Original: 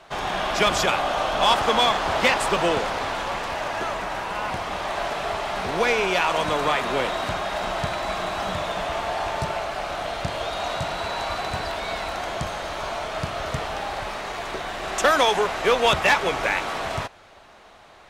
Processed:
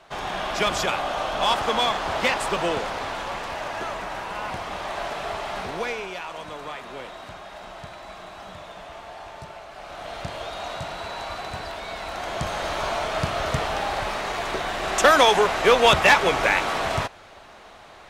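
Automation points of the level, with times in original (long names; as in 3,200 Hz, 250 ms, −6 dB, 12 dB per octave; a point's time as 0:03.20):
0:05.58 −3 dB
0:06.20 −13 dB
0:09.67 −13 dB
0:10.16 −5 dB
0:11.94 −5 dB
0:12.65 +3 dB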